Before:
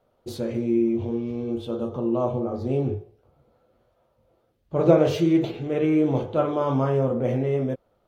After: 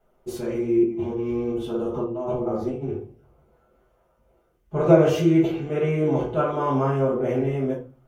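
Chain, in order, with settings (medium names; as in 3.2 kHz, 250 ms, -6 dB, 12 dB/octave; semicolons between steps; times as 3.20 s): fifteen-band graphic EQ 100 Hz -10 dB, 250 Hz -5 dB, 630 Hz -6 dB, 4 kHz -11 dB; 0.83–2.88 s: compressor with a negative ratio -31 dBFS, ratio -0.5; reverberation RT60 0.30 s, pre-delay 5 ms, DRR -5.5 dB; trim -1.5 dB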